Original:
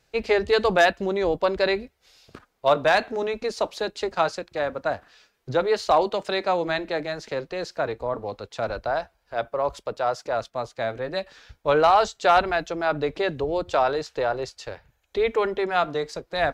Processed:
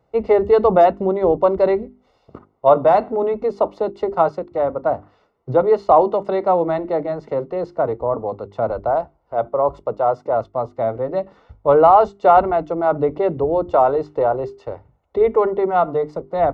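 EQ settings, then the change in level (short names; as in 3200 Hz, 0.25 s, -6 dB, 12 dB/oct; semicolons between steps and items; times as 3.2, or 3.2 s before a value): polynomial smoothing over 65 samples; HPF 51 Hz; notches 50/100/150/200/250/300/350/400 Hz; +7.5 dB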